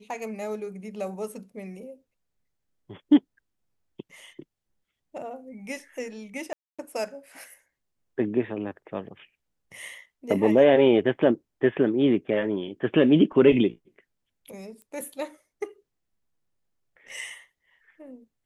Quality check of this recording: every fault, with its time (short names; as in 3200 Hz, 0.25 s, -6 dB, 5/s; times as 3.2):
6.53–6.79 gap 0.256 s
14.82 pop -33 dBFS